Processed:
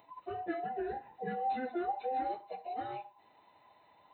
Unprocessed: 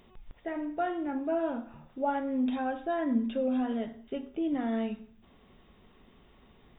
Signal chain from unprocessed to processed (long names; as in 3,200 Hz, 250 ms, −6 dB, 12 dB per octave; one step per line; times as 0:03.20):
frequency inversion band by band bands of 1,000 Hz
time stretch by phase vocoder 0.61×
high-pass filter 83 Hz 12 dB per octave
level −2 dB